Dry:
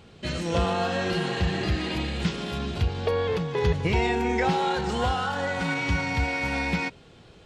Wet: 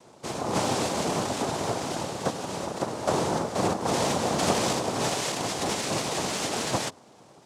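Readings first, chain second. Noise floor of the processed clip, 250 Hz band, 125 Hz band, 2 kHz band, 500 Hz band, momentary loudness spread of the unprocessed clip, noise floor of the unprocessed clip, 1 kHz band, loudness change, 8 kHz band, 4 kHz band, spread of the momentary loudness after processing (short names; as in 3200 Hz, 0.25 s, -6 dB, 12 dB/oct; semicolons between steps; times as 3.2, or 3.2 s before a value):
-54 dBFS, -1.5 dB, -6.5 dB, -6.0 dB, -0.5 dB, 5 LU, -51 dBFS, 0.0 dB, -1.5 dB, +13.5 dB, +1.5 dB, 6 LU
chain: air absorption 240 m; notches 50/100/150 Hz; noise vocoder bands 2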